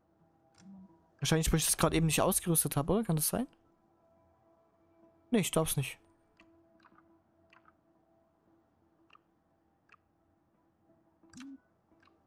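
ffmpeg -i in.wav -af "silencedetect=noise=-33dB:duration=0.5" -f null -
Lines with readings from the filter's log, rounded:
silence_start: 0.00
silence_end: 1.23 | silence_duration: 1.23
silence_start: 3.44
silence_end: 5.33 | silence_duration: 1.89
silence_start: 5.88
silence_end: 12.26 | silence_duration: 6.38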